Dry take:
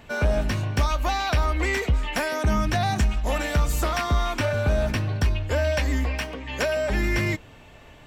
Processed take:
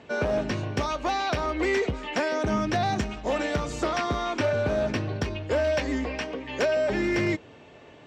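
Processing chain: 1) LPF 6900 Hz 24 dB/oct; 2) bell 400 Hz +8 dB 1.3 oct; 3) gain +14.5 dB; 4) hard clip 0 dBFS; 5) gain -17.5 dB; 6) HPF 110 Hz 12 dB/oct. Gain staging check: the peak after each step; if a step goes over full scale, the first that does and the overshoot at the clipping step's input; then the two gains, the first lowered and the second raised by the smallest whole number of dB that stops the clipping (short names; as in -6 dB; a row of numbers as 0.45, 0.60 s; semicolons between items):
-14.0, -10.0, +4.5, 0.0, -17.5, -14.0 dBFS; step 3, 4.5 dB; step 3 +9.5 dB, step 5 -12.5 dB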